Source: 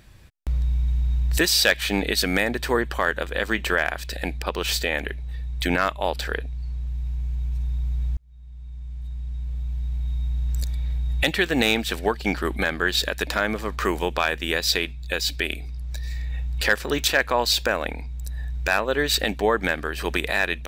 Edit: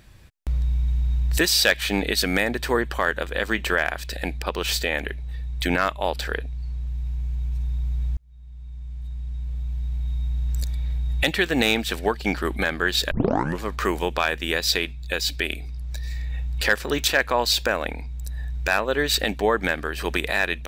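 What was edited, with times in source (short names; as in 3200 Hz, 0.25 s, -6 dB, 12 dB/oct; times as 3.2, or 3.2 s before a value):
13.11 tape start 0.52 s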